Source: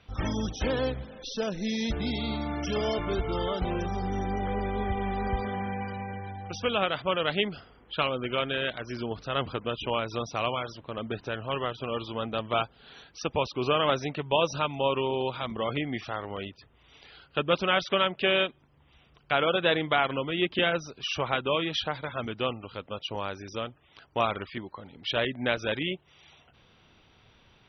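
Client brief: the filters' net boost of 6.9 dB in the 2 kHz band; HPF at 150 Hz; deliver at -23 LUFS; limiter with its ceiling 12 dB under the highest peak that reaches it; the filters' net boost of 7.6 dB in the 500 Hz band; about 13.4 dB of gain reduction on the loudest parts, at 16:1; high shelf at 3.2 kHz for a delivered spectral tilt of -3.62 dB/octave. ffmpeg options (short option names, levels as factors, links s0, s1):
-af "highpass=150,equalizer=f=500:t=o:g=8.5,equalizer=f=2000:t=o:g=5.5,highshelf=f=3200:g=8.5,acompressor=threshold=0.0501:ratio=16,volume=2.99,alimiter=limit=0.282:level=0:latency=1"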